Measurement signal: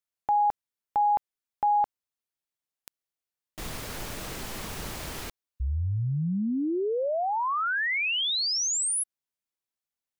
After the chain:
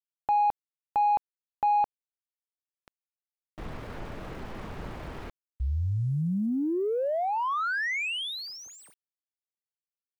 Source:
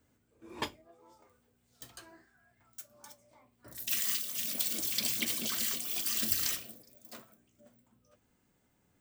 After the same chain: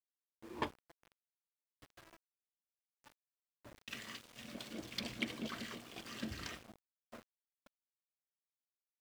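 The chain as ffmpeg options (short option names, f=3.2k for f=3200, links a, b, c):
-af "adynamicsmooth=sensitivity=1.5:basefreq=1.7k,aeval=exprs='val(0)*gte(abs(val(0)),0.00237)':c=same"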